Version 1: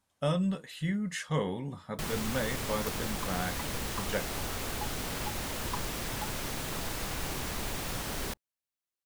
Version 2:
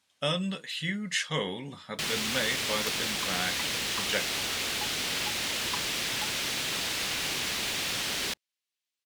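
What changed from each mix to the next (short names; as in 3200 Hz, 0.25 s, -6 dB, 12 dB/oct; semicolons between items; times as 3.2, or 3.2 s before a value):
master: add weighting filter D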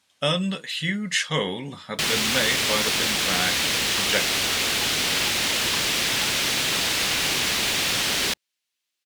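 speech +6.0 dB; first sound +8.0 dB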